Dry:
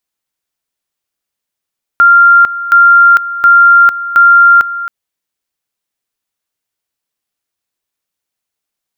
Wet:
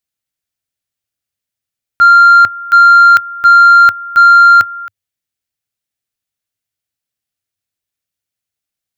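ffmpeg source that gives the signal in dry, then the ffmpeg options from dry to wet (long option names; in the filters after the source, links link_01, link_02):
-f lavfi -i "aevalsrc='pow(10,(-1.5-14.5*gte(mod(t,0.72),0.45))/20)*sin(2*PI*1390*t)':duration=2.88:sample_rate=44100"
-af "agate=range=-8dB:threshold=-8dB:ratio=16:detection=peak,equalizer=frequency=100:width_type=o:width=0.67:gain=11,equalizer=frequency=400:width_type=o:width=0.67:gain=-4,equalizer=frequency=1000:width_type=o:width=0.67:gain=-7,acontrast=21"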